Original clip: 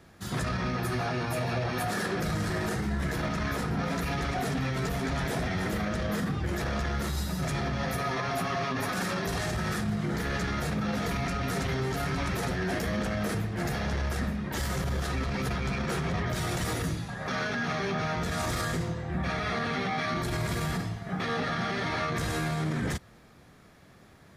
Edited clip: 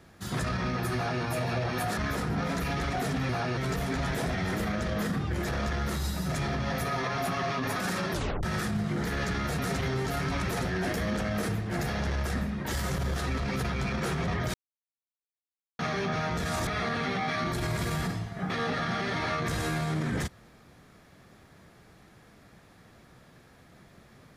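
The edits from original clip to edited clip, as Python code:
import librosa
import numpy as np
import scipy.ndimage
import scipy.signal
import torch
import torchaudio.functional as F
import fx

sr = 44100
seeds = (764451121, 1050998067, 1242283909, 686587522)

y = fx.edit(x, sr, fx.duplicate(start_s=0.95, length_s=0.28, to_s=4.7),
    fx.cut(start_s=1.97, length_s=1.41),
    fx.tape_stop(start_s=9.25, length_s=0.31),
    fx.cut(start_s=10.72, length_s=0.73),
    fx.silence(start_s=16.4, length_s=1.25),
    fx.cut(start_s=18.53, length_s=0.84), tone=tone)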